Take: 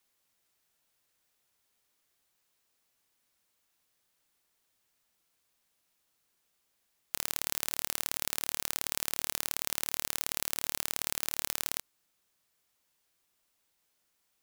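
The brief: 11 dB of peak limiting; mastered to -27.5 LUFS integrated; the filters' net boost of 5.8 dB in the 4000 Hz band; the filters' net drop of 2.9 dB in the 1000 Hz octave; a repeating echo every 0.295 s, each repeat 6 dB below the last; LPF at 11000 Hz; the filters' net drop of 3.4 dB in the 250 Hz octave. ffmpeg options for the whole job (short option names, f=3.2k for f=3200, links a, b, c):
-af "lowpass=11k,equalizer=f=250:t=o:g=-4.5,equalizer=f=1k:t=o:g=-4,equalizer=f=4k:t=o:g=7.5,alimiter=limit=-16.5dB:level=0:latency=1,aecho=1:1:295|590|885|1180|1475|1770:0.501|0.251|0.125|0.0626|0.0313|0.0157,volume=13.5dB"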